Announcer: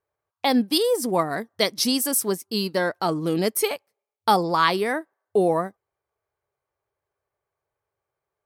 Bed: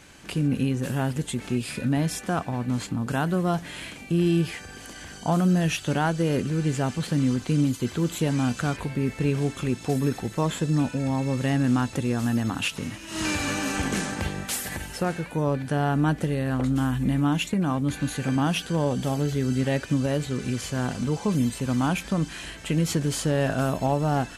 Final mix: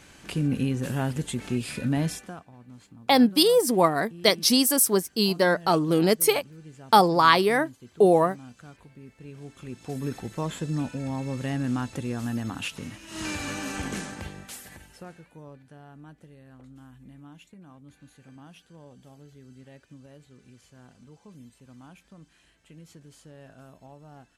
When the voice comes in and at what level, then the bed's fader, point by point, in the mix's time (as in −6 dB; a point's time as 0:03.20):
2.65 s, +2.0 dB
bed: 0:02.09 −1.5 dB
0:02.46 −21 dB
0:09.20 −21 dB
0:10.13 −5.5 dB
0:13.91 −5.5 dB
0:15.84 −25 dB